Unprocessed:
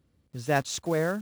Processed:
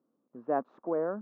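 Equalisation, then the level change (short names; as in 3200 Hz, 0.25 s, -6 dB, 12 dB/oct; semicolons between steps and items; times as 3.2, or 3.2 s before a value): Chebyshev band-pass 230–1200 Hz, order 3; -2.5 dB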